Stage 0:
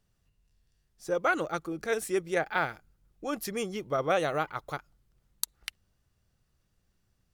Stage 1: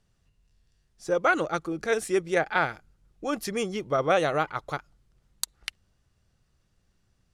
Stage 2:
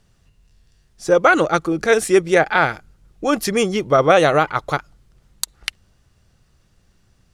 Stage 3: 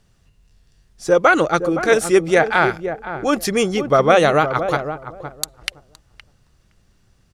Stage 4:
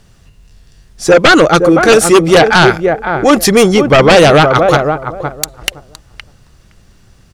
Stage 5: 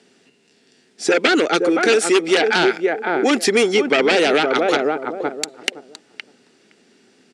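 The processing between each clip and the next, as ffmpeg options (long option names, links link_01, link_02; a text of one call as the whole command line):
ffmpeg -i in.wav -af "lowpass=9400,volume=4dB" out.wav
ffmpeg -i in.wav -af "alimiter=level_in=12dB:limit=-1dB:release=50:level=0:latency=1,volume=-1dB" out.wav
ffmpeg -i in.wav -filter_complex "[0:a]asplit=2[link_01][link_02];[link_02]adelay=516,lowpass=frequency=820:poles=1,volume=-8dB,asplit=2[link_03][link_04];[link_04]adelay=516,lowpass=frequency=820:poles=1,volume=0.19,asplit=2[link_05][link_06];[link_06]adelay=516,lowpass=frequency=820:poles=1,volume=0.19[link_07];[link_01][link_03][link_05][link_07]amix=inputs=4:normalize=0" out.wav
ffmpeg -i in.wav -af "aeval=exprs='0.891*sin(PI/2*2.82*val(0)/0.891)':channel_layout=same" out.wav
ffmpeg -i in.wav -filter_complex "[0:a]highpass=frequency=240:width=0.5412,highpass=frequency=240:width=1.3066,equalizer=frequency=250:width_type=q:width=4:gain=8,equalizer=frequency=410:width_type=q:width=4:gain=8,equalizer=frequency=580:width_type=q:width=4:gain=-4,equalizer=frequency=1100:width_type=q:width=4:gain=-10,equalizer=frequency=2300:width_type=q:width=4:gain=3,equalizer=frequency=6300:width_type=q:width=4:gain=-4,lowpass=frequency=8800:width=0.5412,lowpass=frequency=8800:width=1.3066,acrossover=split=860|1800[link_01][link_02][link_03];[link_01]acompressor=threshold=-14dB:ratio=4[link_04];[link_02]acompressor=threshold=-20dB:ratio=4[link_05];[link_03]acompressor=threshold=-16dB:ratio=4[link_06];[link_04][link_05][link_06]amix=inputs=3:normalize=0,volume=-3dB" out.wav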